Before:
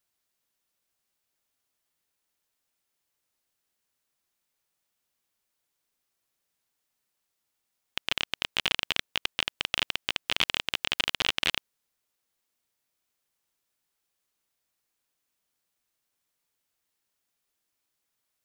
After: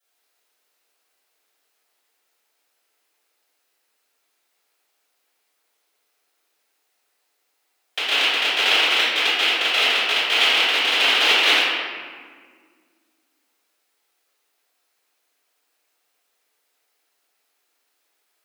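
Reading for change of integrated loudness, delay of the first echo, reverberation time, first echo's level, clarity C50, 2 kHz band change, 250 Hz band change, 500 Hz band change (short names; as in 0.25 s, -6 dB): +11.5 dB, none, 1.8 s, none, -2.5 dB, +13.0 dB, +8.0 dB, +13.5 dB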